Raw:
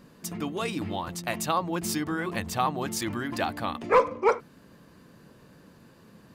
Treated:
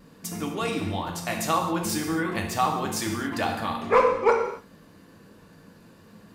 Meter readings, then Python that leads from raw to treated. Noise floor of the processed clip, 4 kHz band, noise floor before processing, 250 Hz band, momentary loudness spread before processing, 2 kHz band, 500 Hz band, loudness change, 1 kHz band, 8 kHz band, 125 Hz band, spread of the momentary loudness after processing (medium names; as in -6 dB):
-53 dBFS, +2.5 dB, -55 dBFS, +2.5 dB, 10 LU, +2.5 dB, +3.0 dB, +2.5 dB, +2.5 dB, +2.5 dB, +2.5 dB, 10 LU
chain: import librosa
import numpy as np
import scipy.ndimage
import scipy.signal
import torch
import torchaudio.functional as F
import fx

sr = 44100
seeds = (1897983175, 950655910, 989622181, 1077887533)

y = fx.vibrato(x, sr, rate_hz=0.51, depth_cents=11.0)
y = fx.rev_gated(y, sr, seeds[0], gate_ms=300, shape='falling', drr_db=1.0)